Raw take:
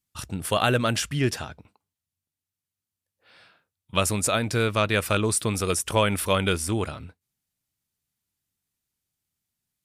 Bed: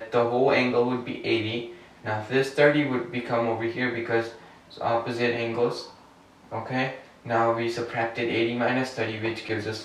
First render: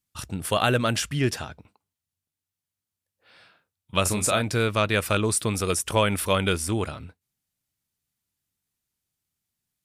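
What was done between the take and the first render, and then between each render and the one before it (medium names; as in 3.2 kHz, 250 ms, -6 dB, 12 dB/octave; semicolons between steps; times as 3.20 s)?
4.02–4.42 s: doubling 33 ms -7 dB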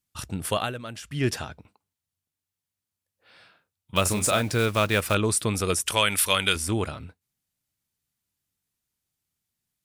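0.48–1.28 s: dip -13.5 dB, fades 0.25 s; 3.96–5.15 s: block-companded coder 5-bit; 5.86–6.56 s: tilt shelf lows -8 dB, about 1.2 kHz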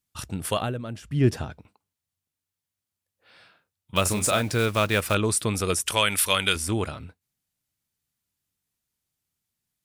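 0.60–1.50 s: tilt shelf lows +6.5 dB, about 750 Hz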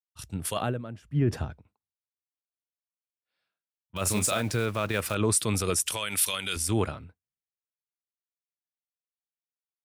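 peak limiter -18 dBFS, peak gain reduction 11 dB; three bands expanded up and down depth 100%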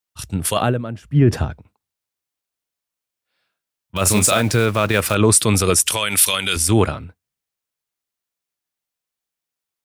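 trim +11 dB; peak limiter -2 dBFS, peak gain reduction 1 dB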